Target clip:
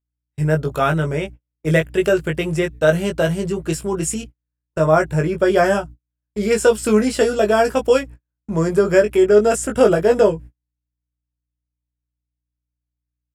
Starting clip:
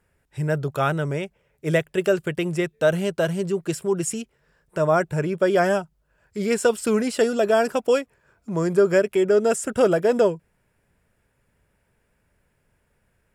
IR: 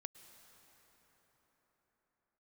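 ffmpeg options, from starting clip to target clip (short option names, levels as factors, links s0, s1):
-filter_complex "[0:a]aeval=exprs='val(0)+0.00708*(sin(2*PI*60*n/s)+sin(2*PI*2*60*n/s)/2+sin(2*PI*3*60*n/s)/3+sin(2*PI*4*60*n/s)/4+sin(2*PI*5*60*n/s)/5)':c=same,asplit=2[s0][s1];[s1]adelay=19,volume=0.631[s2];[s0][s2]amix=inputs=2:normalize=0,agate=range=0.00708:threshold=0.0178:ratio=16:detection=peak,volume=1.41"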